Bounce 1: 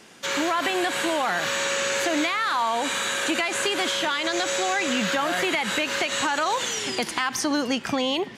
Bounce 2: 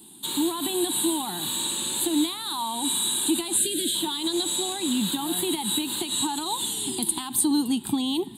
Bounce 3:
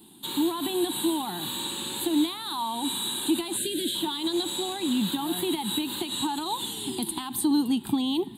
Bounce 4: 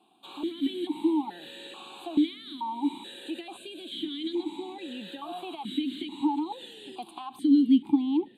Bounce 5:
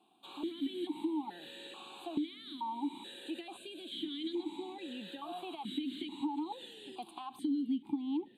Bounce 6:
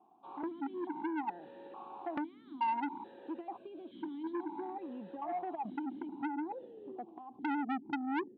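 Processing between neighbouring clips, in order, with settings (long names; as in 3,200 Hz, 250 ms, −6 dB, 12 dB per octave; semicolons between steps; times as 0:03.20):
drawn EQ curve 160 Hz 0 dB, 340 Hz +4 dB, 560 Hz −25 dB, 880 Hz −2 dB, 1,300 Hz −18 dB, 2,200 Hz −21 dB, 3,900 Hz +6 dB, 5,600 Hz −25 dB, 8,400 Hz +14 dB; gain on a spectral selection 0:03.57–0:03.95, 670–1,500 Hz −27 dB
parametric band 8,100 Hz −9.5 dB 1.3 octaves
formant filter that steps through the vowels 2.3 Hz; level +6.5 dB
downward compressor 4 to 1, threshold −27 dBFS, peak gain reduction 10 dB; level −5 dB
low-pass filter sweep 920 Hz → 410 Hz, 0:04.80–0:08.18; saturating transformer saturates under 1,300 Hz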